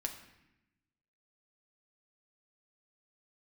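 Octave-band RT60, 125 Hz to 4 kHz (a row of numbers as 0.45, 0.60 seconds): 1.4, 1.3, 0.90, 0.85, 1.0, 0.75 seconds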